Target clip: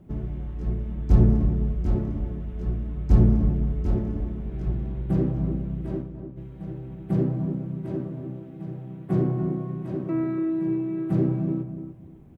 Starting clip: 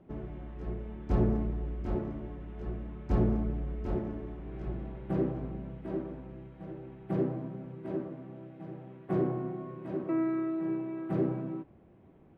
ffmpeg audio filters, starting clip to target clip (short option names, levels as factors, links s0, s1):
-filter_complex "[0:a]bass=f=250:g=12,treble=f=4000:g=12,asplit=3[s0][s1][s2];[s0]afade=t=out:st=5.96:d=0.02[s3];[s1]agate=range=0.0224:threshold=0.0562:ratio=3:detection=peak,afade=t=in:st=5.96:d=0.02,afade=t=out:st=6.36:d=0.02[s4];[s2]afade=t=in:st=6.36:d=0.02[s5];[s3][s4][s5]amix=inputs=3:normalize=0,asplit=2[s6][s7];[s7]adelay=293,lowpass=f=1100:p=1,volume=0.398,asplit=2[s8][s9];[s9]adelay=293,lowpass=f=1100:p=1,volume=0.27,asplit=2[s10][s11];[s11]adelay=293,lowpass=f=1100:p=1,volume=0.27[s12];[s6][s8][s10][s12]amix=inputs=4:normalize=0"